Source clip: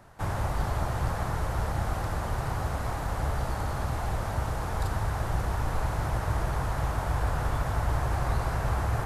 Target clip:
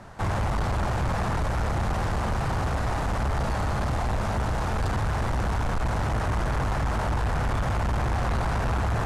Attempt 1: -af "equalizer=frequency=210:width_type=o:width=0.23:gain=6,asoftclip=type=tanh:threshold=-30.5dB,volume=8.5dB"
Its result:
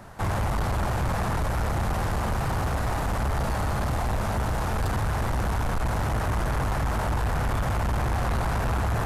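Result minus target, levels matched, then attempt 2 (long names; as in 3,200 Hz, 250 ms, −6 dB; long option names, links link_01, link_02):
8,000 Hz band +2.5 dB
-af "lowpass=8100,equalizer=frequency=210:width_type=o:width=0.23:gain=6,asoftclip=type=tanh:threshold=-30.5dB,volume=8.5dB"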